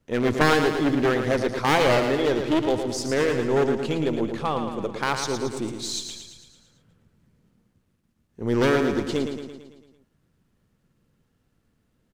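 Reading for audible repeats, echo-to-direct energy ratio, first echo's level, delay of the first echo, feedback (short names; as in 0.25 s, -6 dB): 6, -5.5 dB, -7.0 dB, 0.112 s, 57%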